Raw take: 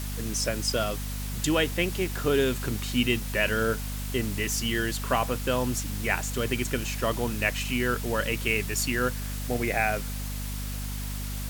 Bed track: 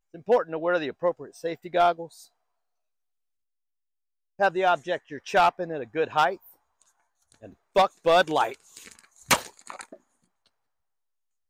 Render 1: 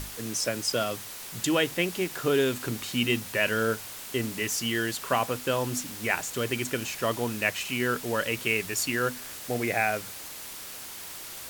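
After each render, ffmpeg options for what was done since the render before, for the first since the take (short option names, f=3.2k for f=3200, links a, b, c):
-af "bandreject=f=50:t=h:w=6,bandreject=f=100:t=h:w=6,bandreject=f=150:t=h:w=6,bandreject=f=200:t=h:w=6,bandreject=f=250:t=h:w=6"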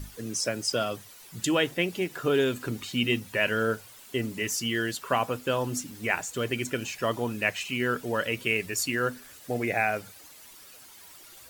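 -af "afftdn=nr=12:nf=-41"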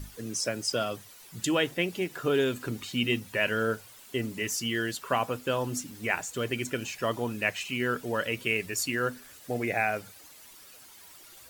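-af "volume=-1.5dB"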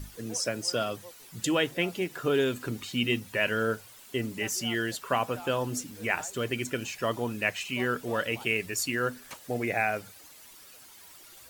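-filter_complex "[1:a]volume=-24.5dB[a];[0:a][a]amix=inputs=2:normalize=0"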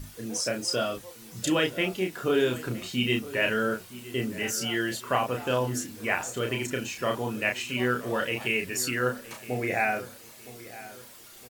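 -filter_complex "[0:a]asplit=2[a][b];[b]adelay=32,volume=-4dB[c];[a][c]amix=inputs=2:normalize=0,asplit=2[d][e];[e]adelay=965,lowpass=f=2k:p=1,volume=-16dB,asplit=2[f][g];[g]adelay=965,lowpass=f=2k:p=1,volume=0.43,asplit=2[h][i];[i]adelay=965,lowpass=f=2k:p=1,volume=0.43,asplit=2[j][k];[k]adelay=965,lowpass=f=2k:p=1,volume=0.43[l];[d][f][h][j][l]amix=inputs=5:normalize=0"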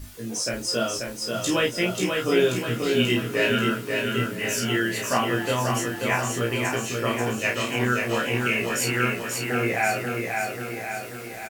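-filter_complex "[0:a]asplit=2[a][b];[b]adelay=17,volume=-2dB[c];[a][c]amix=inputs=2:normalize=0,aecho=1:1:536|1072|1608|2144|2680|3216|3752|4288:0.631|0.366|0.212|0.123|0.0714|0.0414|0.024|0.0139"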